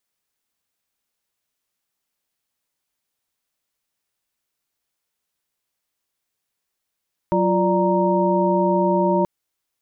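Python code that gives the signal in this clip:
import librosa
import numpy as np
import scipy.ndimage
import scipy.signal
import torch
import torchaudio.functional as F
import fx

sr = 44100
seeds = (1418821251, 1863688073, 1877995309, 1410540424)

y = fx.chord(sr, length_s=1.93, notes=(54, 65, 74, 82), wave='sine', level_db=-21.0)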